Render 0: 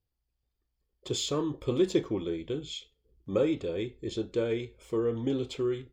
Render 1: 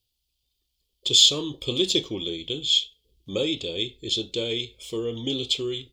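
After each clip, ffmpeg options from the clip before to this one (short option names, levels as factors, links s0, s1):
-af "highshelf=f=2300:t=q:w=3:g=12.5"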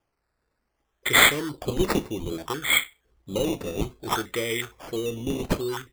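-af "acrusher=samples=11:mix=1:aa=0.000001:lfo=1:lforange=6.6:lforate=0.62"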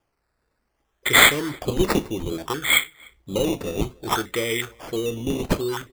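-filter_complex "[0:a]asplit=2[s0][s1];[s1]adelay=297.4,volume=0.0447,highshelf=f=4000:g=-6.69[s2];[s0][s2]amix=inputs=2:normalize=0,volume=1.41"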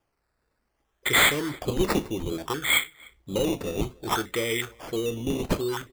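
-af "asoftclip=type=tanh:threshold=0.266,volume=0.794"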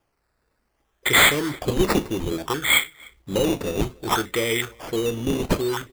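-af "acrusher=bits=4:mode=log:mix=0:aa=0.000001,volume=1.58"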